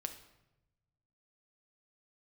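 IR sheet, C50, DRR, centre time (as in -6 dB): 10.0 dB, 5.5 dB, 12 ms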